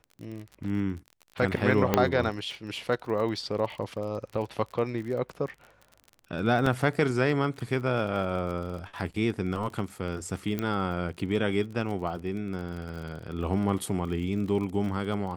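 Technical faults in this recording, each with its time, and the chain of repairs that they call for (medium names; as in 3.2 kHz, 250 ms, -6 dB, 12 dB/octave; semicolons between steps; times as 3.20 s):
crackle 36 per s -36 dBFS
1.94 s: pop -7 dBFS
6.66 s: dropout 4.2 ms
10.59 s: pop -16 dBFS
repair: de-click; interpolate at 6.66 s, 4.2 ms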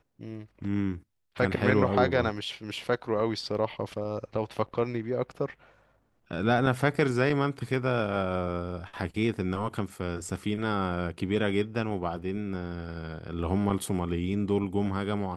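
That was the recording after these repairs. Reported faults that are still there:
nothing left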